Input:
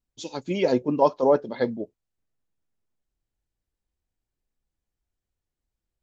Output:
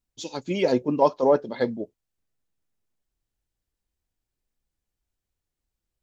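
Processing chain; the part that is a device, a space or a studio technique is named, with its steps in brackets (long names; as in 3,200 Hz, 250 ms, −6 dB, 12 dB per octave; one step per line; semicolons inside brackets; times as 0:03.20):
exciter from parts (in parallel at −8 dB: high-pass filter 3,000 Hz 6 dB per octave + soft clipping −34.5 dBFS, distortion −7 dB)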